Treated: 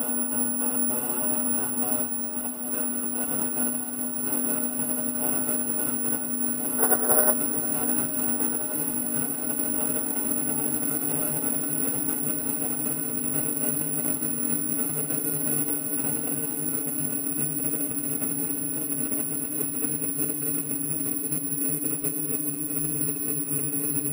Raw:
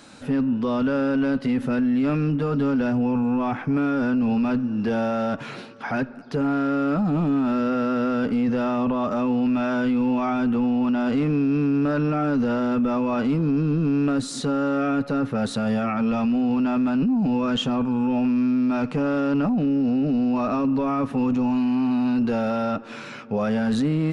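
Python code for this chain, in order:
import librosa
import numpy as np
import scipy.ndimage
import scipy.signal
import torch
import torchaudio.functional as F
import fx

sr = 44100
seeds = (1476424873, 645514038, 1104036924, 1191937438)

p1 = fx.paulstretch(x, sr, seeds[0], factor=42.0, window_s=1.0, from_s=10.84)
p2 = scipy.signal.sosfilt(scipy.signal.butter(2, 120.0, 'highpass', fs=sr, output='sos'), p1)
p3 = fx.hum_notches(p2, sr, base_hz=60, count=4)
p4 = fx.over_compress(p3, sr, threshold_db=-26.0, ratio=-1.0)
p5 = p4 + fx.echo_heads(p4, sr, ms=205, heads='first and second', feedback_pct=66, wet_db=-14, dry=0)
p6 = fx.spec_box(p5, sr, start_s=6.79, length_s=0.54, low_hz=340.0, high_hz=2000.0, gain_db=12)
p7 = (np.kron(p6[::4], np.eye(4)[0]) * 4)[:len(p6)]
p8 = fx.echo_crushed(p7, sr, ms=711, feedback_pct=80, bits=5, wet_db=-14)
y = F.gain(torch.from_numpy(p8), -8.5).numpy()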